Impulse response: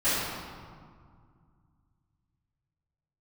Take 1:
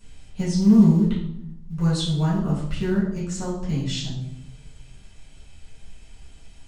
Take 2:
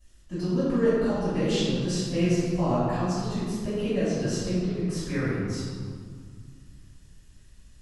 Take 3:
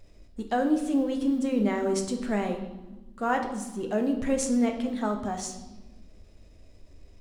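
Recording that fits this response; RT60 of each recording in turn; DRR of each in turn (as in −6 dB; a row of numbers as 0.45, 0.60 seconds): 2; 0.75, 2.0, 1.2 seconds; −10.0, −17.5, 3.5 decibels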